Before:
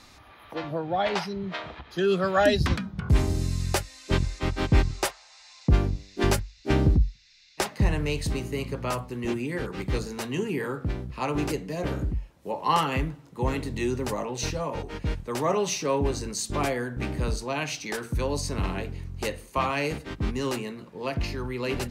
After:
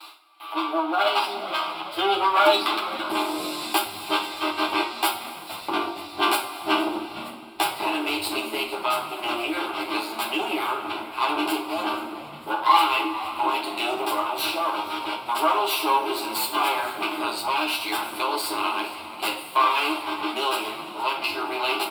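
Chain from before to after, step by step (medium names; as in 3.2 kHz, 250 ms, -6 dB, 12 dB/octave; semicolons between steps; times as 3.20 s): comb filter that takes the minimum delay 9.5 ms; gate with hold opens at -42 dBFS; elliptic high-pass 330 Hz, stop band 50 dB; static phaser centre 1.8 kHz, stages 6; on a send: frequency-shifting echo 466 ms, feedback 50%, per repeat -74 Hz, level -19 dB; on the sum: two-slope reverb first 0.32 s, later 2.7 s, from -19 dB, DRR 0.5 dB; in parallel at +2.5 dB: compression, threshold -38 dBFS, peak gain reduction 17.5 dB; on the sum: trim +5.5 dB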